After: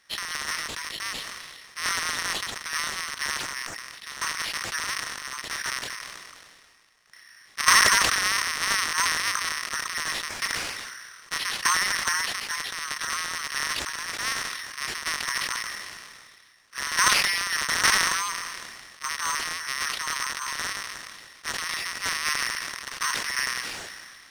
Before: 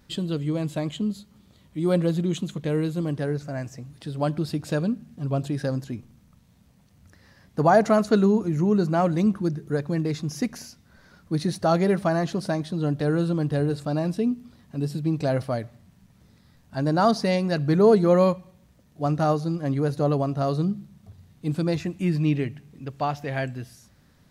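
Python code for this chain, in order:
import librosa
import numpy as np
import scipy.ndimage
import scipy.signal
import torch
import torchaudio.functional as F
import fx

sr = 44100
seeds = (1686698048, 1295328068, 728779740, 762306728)

y = fx.cycle_switch(x, sr, every=2, mode='inverted')
y = scipy.signal.sosfilt(scipy.signal.butter(16, 1000.0, 'highpass', fs=sr, output='sos'), y)
y = fx.peak_eq(y, sr, hz=1900.0, db=11.0, octaves=0.25)
y = (np.kron(y[::6], np.eye(6)[0]) * 6)[:len(y)]
y = fx.air_absorb(y, sr, metres=83.0)
y = fx.sustainer(y, sr, db_per_s=29.0)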